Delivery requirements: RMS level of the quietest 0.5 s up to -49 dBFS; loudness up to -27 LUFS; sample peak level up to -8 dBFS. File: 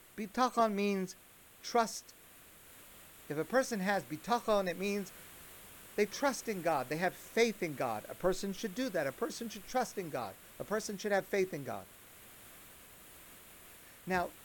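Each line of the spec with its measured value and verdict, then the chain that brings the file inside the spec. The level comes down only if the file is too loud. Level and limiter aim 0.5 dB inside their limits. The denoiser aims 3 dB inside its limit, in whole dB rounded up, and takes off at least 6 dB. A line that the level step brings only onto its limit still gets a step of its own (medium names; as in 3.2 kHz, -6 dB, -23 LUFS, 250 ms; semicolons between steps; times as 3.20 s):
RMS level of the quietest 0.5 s -59 dBFS: pass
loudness -35.5 LUFS: pass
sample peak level -17.0 dBFS: pass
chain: none needed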